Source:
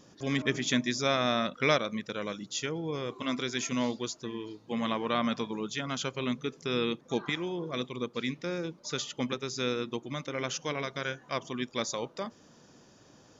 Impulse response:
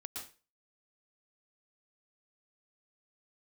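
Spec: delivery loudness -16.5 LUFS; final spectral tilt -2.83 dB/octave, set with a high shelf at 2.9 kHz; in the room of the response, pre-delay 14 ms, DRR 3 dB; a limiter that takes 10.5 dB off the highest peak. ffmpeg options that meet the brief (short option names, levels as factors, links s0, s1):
-filter_complex "[0:a]highshelf=f=2900:g=8.5,alimiter=limit=0.119:level=0:latency=1,asplit=2[s0][s1];[1:a]atrim=start_sample=2205,adelay=14[s2];[s1][s2]afir=irnorm=-1:irlink=0,volume=0.891[s3];[s0][s3]amix=inputs=2:normalize=0,volume=5.01"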